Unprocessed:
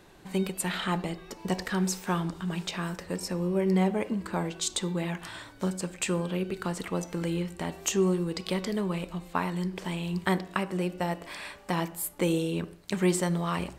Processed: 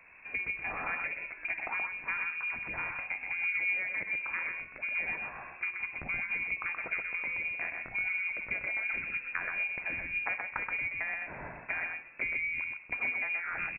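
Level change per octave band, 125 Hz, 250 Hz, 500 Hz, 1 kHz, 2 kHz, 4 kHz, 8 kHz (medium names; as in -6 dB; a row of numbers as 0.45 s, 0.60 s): -24.0 dB, -25.5 dB, -19.0 dB, -8.0 dB, +8.5 dB, under -15 dB, under -40 dB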